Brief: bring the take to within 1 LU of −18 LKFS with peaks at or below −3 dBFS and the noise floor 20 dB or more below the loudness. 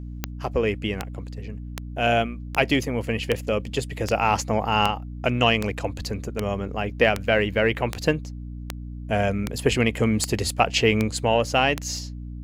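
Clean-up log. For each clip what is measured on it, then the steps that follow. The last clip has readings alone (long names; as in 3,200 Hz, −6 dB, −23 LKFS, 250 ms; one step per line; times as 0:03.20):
number of clicks 16; mains hum 60 Hz; hum harmonics up to 300 Hz; level of the hum −32 dBFS; integrated loudness −23.5 LKFS; sample peak −3.5 dBFS; target loudness −18.0 LKFS
→ click removal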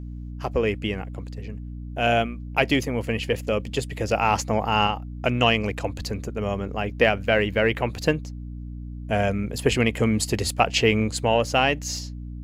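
number of clicks 0; mains hum 60 Hz; hum harmonics up to 300 Hz; level of the hum −32 dBFS
→ hum removal 60 Hz, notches 5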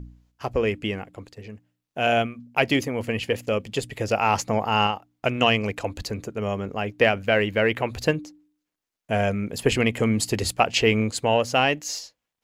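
mains hum none found; integrated loudness −24.0 LKFS; sample peak −4.0 dBFS; target loudness −18.0 LKFS
→ level +6 dB
brickwall limiter −3 dBFS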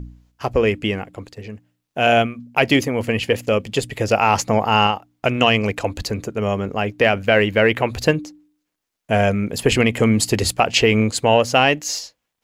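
integrated loudness −18.5 LKFS; sample peak −3.0 dBFS; background noise floor −78 dBFS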